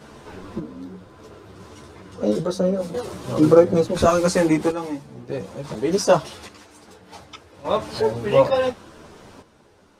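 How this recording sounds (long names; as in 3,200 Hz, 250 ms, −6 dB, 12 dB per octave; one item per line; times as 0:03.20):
sample-and-hold tremolo 1.7 Hz, depth 75%
a shimmering, thickened sound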